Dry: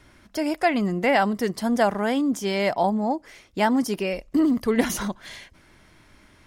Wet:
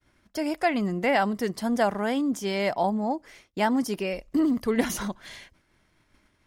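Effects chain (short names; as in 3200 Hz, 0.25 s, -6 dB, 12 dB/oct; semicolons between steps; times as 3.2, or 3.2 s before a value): expander -46 dBFS; gain -3 dB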